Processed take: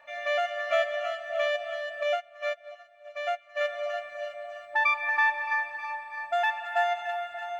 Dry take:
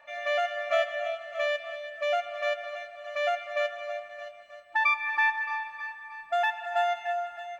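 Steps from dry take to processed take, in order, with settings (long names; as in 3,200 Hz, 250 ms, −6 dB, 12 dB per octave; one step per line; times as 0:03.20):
echo with a time of its own for lows and highs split 740 Hz, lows 585 ms, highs 330 ms, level −9 dB
convolution reverb RT60 0.35 s, pre-delay 3 ms, DRR 18 dB
0:02.03–0:03.61: expander for the loud parts 2.5 to 1, over −36 dBFS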